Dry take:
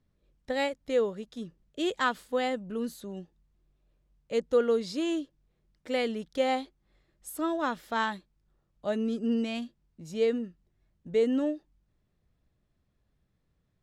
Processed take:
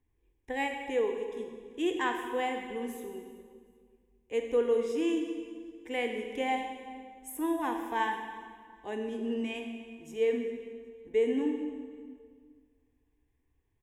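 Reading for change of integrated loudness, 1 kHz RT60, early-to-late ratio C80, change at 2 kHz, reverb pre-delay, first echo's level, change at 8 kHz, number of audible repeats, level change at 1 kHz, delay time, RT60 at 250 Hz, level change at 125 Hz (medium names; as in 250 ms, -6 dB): -2.5 dB, 1.8 s, 6.5 dB, -1.0 dB, 27 ms, -22.0 dB, -2.0 dB, 2, -0.5 dB, 385 ms, 2.2 s, no reading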